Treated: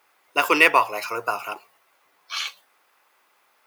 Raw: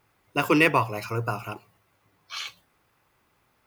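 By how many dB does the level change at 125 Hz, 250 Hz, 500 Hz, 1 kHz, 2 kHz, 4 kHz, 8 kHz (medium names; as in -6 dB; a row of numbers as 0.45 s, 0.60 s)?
-19.5 dB, -5.5 dB, +1.5 dB, +5.5 dB, +6.0 dB, +6.0 dB, +6.0 dB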